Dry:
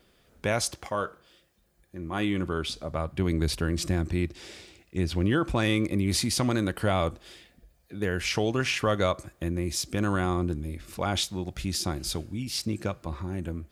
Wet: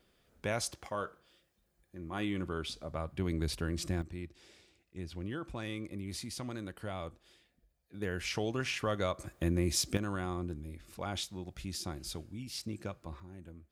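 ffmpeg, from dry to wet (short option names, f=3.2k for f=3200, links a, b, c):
-af "asetnsamples=n=441:p=0,asendcmd='4.02 volume volume -15dB;7.94 volume volume -8dB;9.2 volume volume -1dB;9.97 volume volume -10dB;13.2 volume volume -17dB',volume=-7.5dB"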